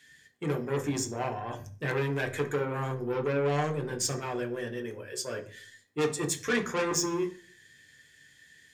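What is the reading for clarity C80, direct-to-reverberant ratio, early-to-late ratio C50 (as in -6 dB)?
18.5 dB, 3.0 dB, 14.0 dB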